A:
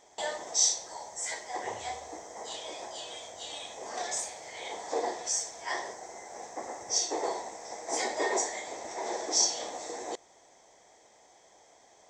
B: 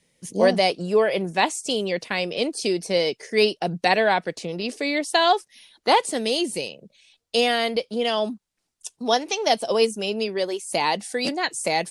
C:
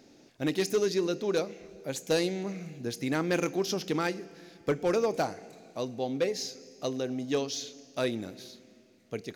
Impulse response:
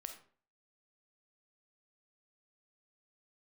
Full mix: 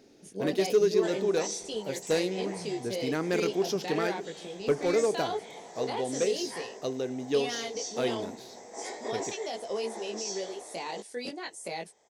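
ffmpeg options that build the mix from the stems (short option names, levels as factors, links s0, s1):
-filter_complex "[0:a]adelay=850,volume=0.562[s0];[1:a]volume=0.299[s1];[2:a]volume=0.75[s2];[s0][s1]amix=inputs=2:normalize=0,flanger=delay=17.5:depth=3.5:speed=1.2,alimiter=level_in=1.33:limit=0.0631:level=0:latency=1:release=15,volume=0.75,volume=1[s3];[s2][s3]amix=inputs=2:normalize=0,equalizer=f=420:w=4.3:g=7"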